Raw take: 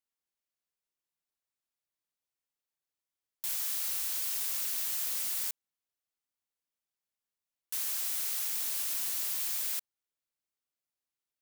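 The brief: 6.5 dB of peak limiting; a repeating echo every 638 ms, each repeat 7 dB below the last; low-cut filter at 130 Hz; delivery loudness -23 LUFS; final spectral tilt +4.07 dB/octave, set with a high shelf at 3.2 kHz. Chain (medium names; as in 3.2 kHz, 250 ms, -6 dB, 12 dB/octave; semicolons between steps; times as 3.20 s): high-pass 130 Hz; treble shelf 3.2 kHz +5 dB; peak limiter -21.5 dBFS; feedback delay 638 ms, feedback 45%, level -7 dB; trim +6 dB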